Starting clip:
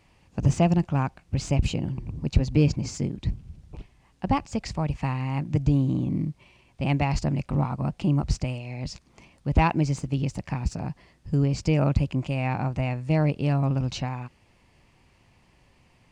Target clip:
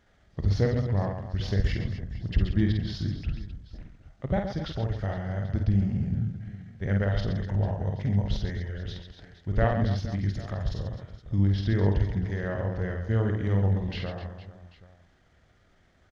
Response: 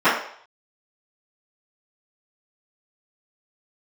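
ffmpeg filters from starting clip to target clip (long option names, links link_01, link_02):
-filter_complex "[0:a]aecho=1:1:50|130|258|462.8|790.5:0.631|0.398|0.251|0.158|0.1,asetrate=31183,aresample=44100,atempo=1.41421,asplit=2[link_01][link_02];[1:a]atrim=start_sample=2205[link_03];[link_02][link_03]afir=irnorm=-1:irlink=0,volume=-40dB[link_04];[link_01][link_04]amix=inputs=2:normalize=0,volume=-4dB"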